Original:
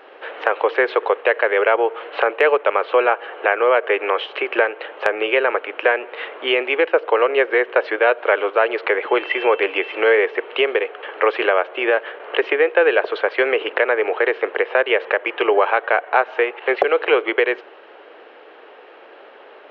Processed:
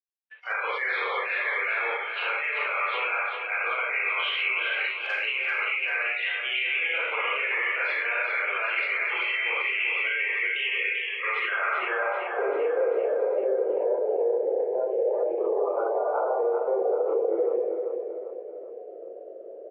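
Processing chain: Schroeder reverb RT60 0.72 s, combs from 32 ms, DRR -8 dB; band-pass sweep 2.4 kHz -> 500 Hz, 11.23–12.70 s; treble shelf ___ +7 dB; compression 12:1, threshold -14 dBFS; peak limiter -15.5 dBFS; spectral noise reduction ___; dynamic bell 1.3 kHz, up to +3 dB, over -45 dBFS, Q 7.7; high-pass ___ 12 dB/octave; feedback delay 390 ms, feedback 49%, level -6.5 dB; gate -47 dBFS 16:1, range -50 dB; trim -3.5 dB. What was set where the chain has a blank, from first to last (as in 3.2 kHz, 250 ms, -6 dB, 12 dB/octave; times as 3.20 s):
2.2 kHz, 24 dB, 180 Hz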